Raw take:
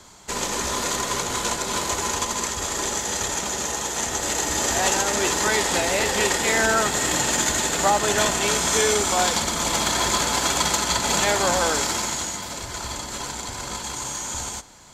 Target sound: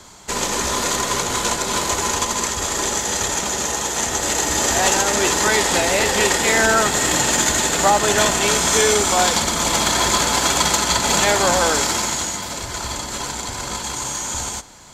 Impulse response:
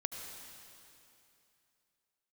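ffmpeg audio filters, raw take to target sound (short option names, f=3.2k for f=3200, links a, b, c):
-af "aeval=exprs='0.398*(cos(1*acos(clip(val(0)/0.398,-1,1)))-cos(1*PI/2))+0.00398*(cos(5*acos(clip(val(0)/0.398,-1,1)))-cos(5*PI/2))+0.00316*(cos(6*acos(clip(val(0)/0.398,-1,1)))-cos(6*PI/2))':c=same,volume=4dB"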